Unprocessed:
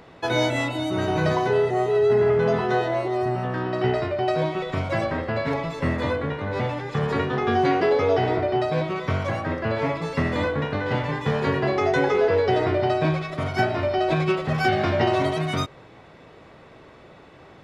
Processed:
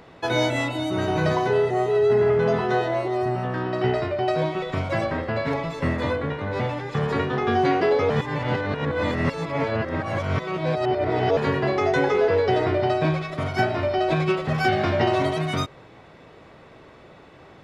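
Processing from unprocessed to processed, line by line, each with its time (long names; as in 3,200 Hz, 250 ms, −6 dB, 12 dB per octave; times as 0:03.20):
0:08.10–0:11.37: reverse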